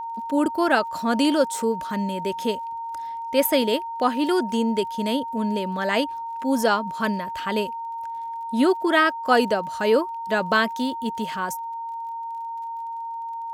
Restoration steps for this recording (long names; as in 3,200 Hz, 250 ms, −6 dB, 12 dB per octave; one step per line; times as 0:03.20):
click removal
notch filter 920 Hz, Q 30